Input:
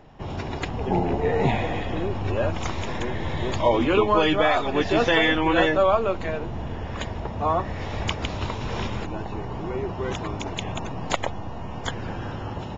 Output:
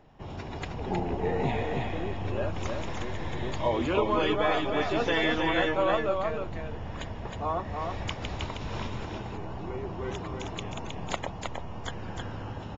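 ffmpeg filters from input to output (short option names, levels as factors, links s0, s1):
-af "aecho=1:1:315:0.631,volume=0.422"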